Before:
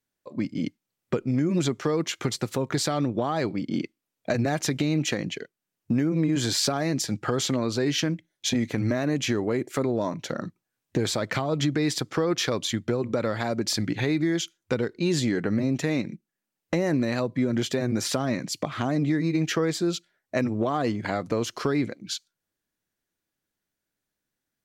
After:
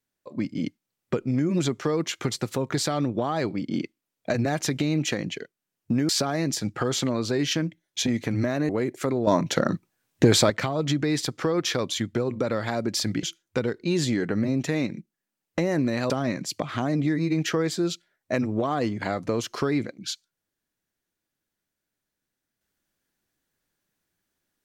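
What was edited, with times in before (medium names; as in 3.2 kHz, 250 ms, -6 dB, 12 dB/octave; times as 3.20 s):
6.09–6.56 s: delete
9.16–9.42 s: delete
10.00–11.23 s: gain +8 dB
13.96–14.38 s: delete
17.25–18.13 s: delete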